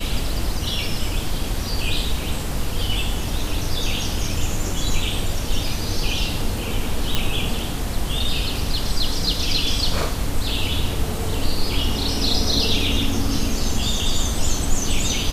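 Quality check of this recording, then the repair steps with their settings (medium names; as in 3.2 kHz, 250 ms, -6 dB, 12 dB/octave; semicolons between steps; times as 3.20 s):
7.15 s: pop -4 dBFS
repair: de-click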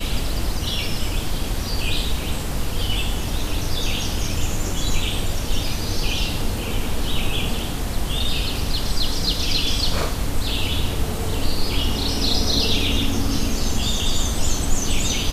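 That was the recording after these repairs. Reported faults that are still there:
nothing left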